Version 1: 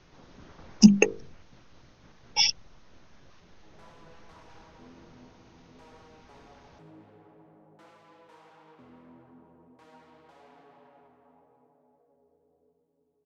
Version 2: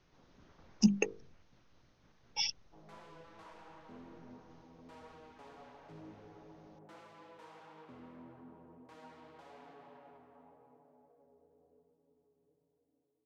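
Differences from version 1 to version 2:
speech -11.5 dB; background: entry -0.90 s

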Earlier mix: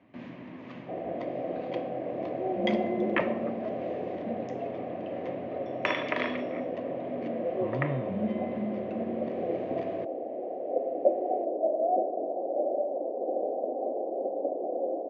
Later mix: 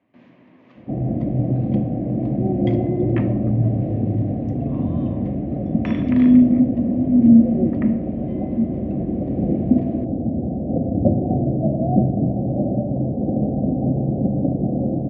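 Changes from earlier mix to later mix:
speech: entry -2.90 s; first sound -7.0 dB; second sound: remove steep high-pass 410 Hz 36 dB/octave

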